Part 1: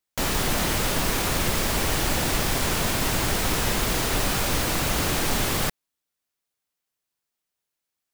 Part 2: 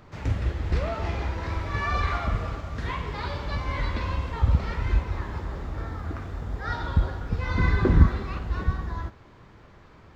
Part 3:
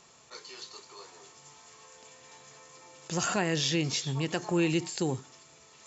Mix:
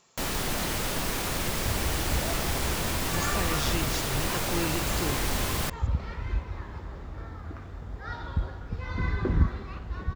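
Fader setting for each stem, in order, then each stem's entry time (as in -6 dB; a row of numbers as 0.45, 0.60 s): -5.5, -6.5, -5.0 dB; 0.00, 1.40, 0.00 s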